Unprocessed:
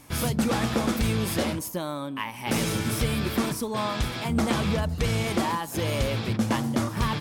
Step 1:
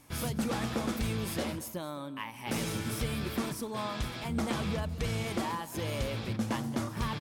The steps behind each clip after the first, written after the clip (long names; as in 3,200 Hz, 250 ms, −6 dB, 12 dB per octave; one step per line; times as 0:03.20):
single-tap delay 215 ms −18 dB
level −7.5 dB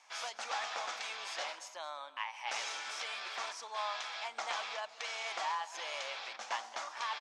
elliptic band-pass filter 730–6,500 Hz, stop band 70 dB
level +1 dB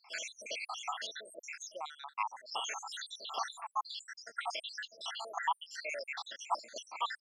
time-frequency cells dropped at random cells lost 82%
level +7 dB